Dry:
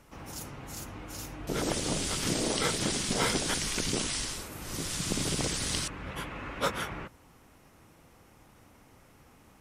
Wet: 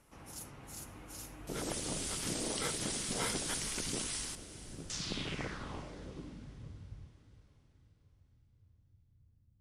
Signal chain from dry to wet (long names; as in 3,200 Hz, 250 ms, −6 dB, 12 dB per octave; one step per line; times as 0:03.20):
0:04.35–0:04.90: running median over 41 samples
low-pass filter sweep 11,000 Hz → 100 Hz, 0:04.69–0:06.71
feedback delay with all-pass diffusion 455 ms, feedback 47%, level −15 dB
level −8.5 dB